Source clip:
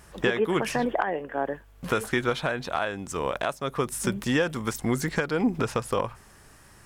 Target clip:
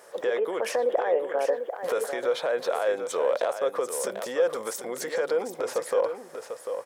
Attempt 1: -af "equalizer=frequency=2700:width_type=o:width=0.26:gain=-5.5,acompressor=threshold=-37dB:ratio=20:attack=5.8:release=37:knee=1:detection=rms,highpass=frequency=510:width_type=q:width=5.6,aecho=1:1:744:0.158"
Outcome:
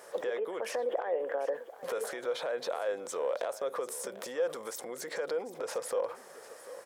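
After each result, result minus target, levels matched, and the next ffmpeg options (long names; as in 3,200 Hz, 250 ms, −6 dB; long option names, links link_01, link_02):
downward compressor: peak gain reduction +7.5 dB; echo-to-direct −7.5 dB
-af "equalizer=frequency=2700:width_type=o:width=0.26:gain=-5.5,acompressor=threshold=-29dB:ratio=20:attack=5.8:release=37:knee=1:detection=rms,highpass=frequency=510:width_type=q:width=5.6,aecho=1:1:744:0.158"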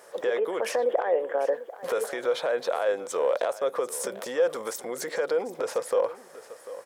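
echo-to-direct −7.5 dB
-af "equalizer=frequency=2700:width_type=o:width=0.26:gain=-5.5,acompressor=threshold=-29dB:ratio=20:attack=5.8:release=37:knee=1:detection=rms,highpass=frequency=510:width_type=q:width=5.6,aecho=1:1:744:0.376"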